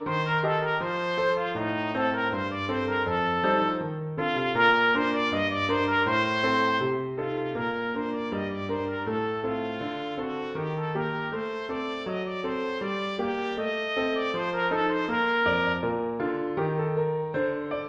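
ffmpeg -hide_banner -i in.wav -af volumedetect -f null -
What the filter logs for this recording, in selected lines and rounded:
mean_volume: -27.3 dB
max_volume: -8.8 dB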